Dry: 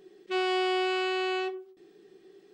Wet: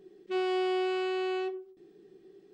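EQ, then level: bass shelf 480 Hz +11.5 dB; -7.5 dB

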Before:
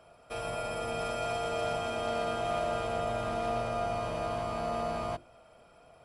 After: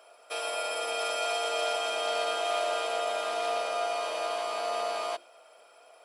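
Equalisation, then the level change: high-pass 410 Hz 24 dB/octave; treble shelf 2.7 kHz +7.5 dB; dynamic bell 3.6 kHz, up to +4 dB, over -54 dBFS, Q 1.3; +1.5 dB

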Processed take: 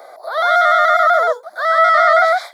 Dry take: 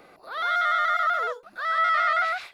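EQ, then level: resonant high-pass 640 Hz, resonance Q 4.9; Butterworth band-stop 2.7 kHz, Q 2.2; treble shelf 3.9 kHz +6.5 dB; +7.0 dB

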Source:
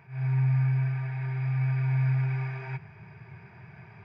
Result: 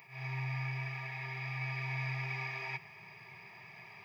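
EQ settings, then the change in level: high-pass 98 Hz; Butterworth band-stop 1.5 kHz, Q 3.9; tilt EQ +4.5 dB/octave; 0.0 dB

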